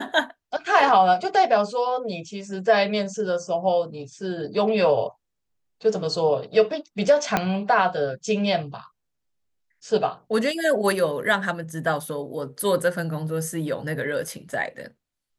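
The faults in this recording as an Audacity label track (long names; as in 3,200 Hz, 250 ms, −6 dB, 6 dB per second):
7.370000	7.370000	click −6 dBFS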